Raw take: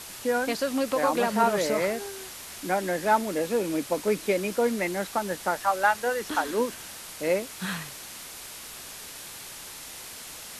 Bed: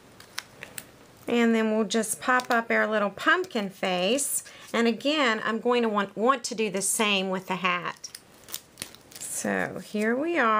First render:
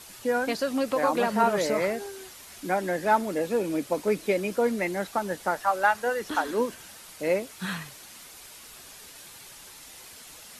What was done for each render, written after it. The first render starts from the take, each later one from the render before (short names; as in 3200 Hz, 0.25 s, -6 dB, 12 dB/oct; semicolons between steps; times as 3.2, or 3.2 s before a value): denoiser 7 dB, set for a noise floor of -42 dBFS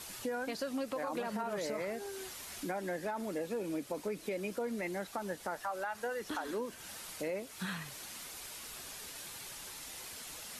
limiter -18.5 dBFS, peak gain reduction 9.5 dB; compressor 2.5:1, threshold -39 dBFS, peak gain reduction 11 dB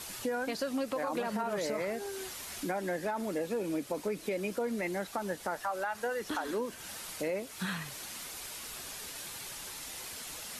gain +3.5 dB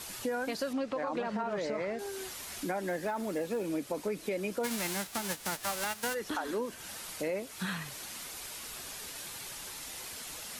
0.73–1.99 air absorption 110 m; 2.88–3.68 short-mantissa float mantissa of 4-bit; 4.63–6.13 spectral whitening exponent 0.3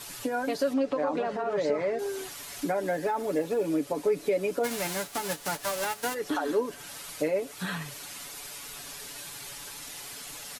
comb 7 ms, depth 64%; dynamic EQ 460 Hz, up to +6 dB, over -45 dBFS, Q 0.73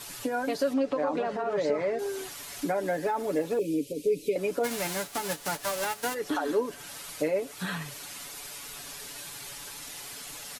3.59–4.36 elliptic band-stop 490–2500 Hz